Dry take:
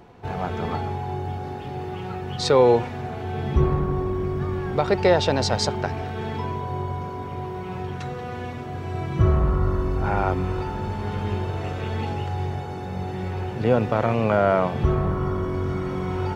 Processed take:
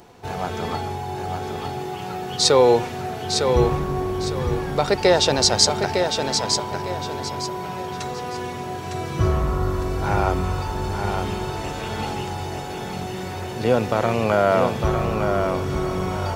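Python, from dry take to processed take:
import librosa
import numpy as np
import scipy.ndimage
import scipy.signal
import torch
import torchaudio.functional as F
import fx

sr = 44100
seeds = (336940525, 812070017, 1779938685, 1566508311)

p1 = fx.bass_treble(x, sr, bass_db=-4, treble_db=13)
p2 = p1 + fx.echo_feedback(p1, sr, ms=906, feedback_pct=31, wet_db=-5.5, dry=0)
y = p2 * 10.0 ** (1.5 / 20.0)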